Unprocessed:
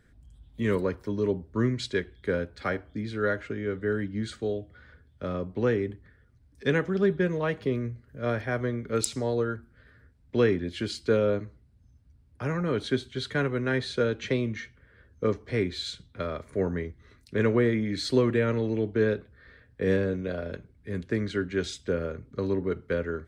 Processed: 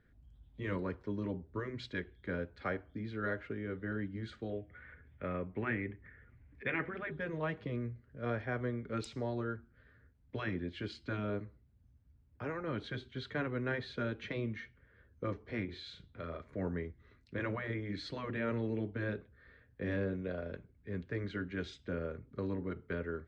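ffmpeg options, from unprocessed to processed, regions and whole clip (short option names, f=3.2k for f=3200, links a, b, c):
-filter_complex "[0:a]asettb=1/sr,asplit=3[a][b][c];[a]atrim=end=4.504[d];[b]atrim=start=4.5:end=7.11,asetpts=PTS-STARTPTS,afade=t=in:d=0.004:c=qsin,afade=t=out:st=2.606:d=0.004:c=qsin,acompressor=mode=upward:threshold=-44dB:ratio=2.5:attack=3.2:release=140:knee=2.83:detection=peak,lowpass=f=2.2k:t=q:w=3.4[e];[c]atrim=start=7.106[f];[d][e]acrossfade=d=0.004:c1=hsin:c2=qsin[g];[g][f]acrossfade=d=0.004:c1=qsin:c2=hsin,asettb=1/sr,asplit=3[h][i][j];[h]atrim=end=15.654[k];[i]atrim=start=15.65:end=16.42,asetpts=PTS-STARTPTS,afade=t=in:d=0.004:c=qsin,afade=t=out:st=0.766:d=0.004:c=qsin,acompressor=threshold=-40dB:ratio=1.5:attack=3.2:release=140:knee=1:detection=peak,asplit=2[l][m];[m]adelay=36,volume=-3.5dB[n];[l][n]amix=inputs=2:normalize=0,atrim=end_sample=33957[o];[j]atrim=start=16.416[p];[k][o]acrossfade=d=0.004:c1=hsin:c2=qsin[q];[q][p]acrossfade=d=0.004:c1=qsin:c2=hsin,afftfilt=real='re*lt(hypot(re,im),0.355)':imag='im*lt(hypot(re,im),0.355)':win_size=1024:overlap=0.75,lowpass=3.2k,volume=-7dB"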